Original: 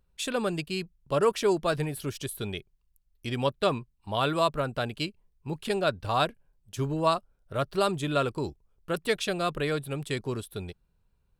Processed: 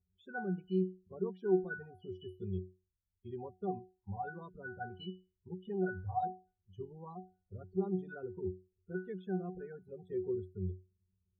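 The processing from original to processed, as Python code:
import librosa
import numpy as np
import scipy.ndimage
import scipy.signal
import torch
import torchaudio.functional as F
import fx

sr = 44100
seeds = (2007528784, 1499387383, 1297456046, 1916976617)

y = fx.spec_topn(x, sr, count=16)
y = fx.octave_resonator(y, sr, note='F#', decay_s=0.3)
y = fx.small_body(y, sr, hz=(550.0, 1500.0), ring_ms=30, db=fx.line((9.87, 11.0), (10.31, 16.0)), at=(9.87, 10.31), fade=0.02)
y = y * 10.0 ** (5.5 / 20.0)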